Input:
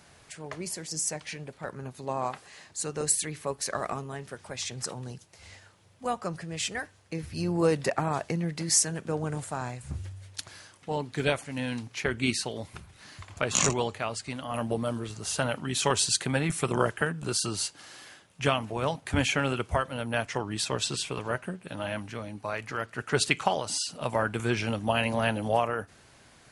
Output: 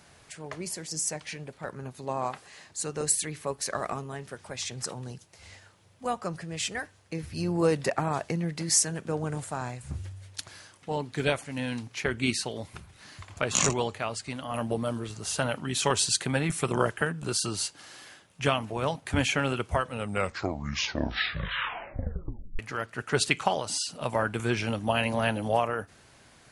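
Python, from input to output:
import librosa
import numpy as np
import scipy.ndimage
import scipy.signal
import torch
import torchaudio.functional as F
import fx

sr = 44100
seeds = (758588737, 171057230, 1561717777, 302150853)

y = fx.edit(x, sr, fx.tape_stop(start_s=19.76, length_s=2.83), tone=tone)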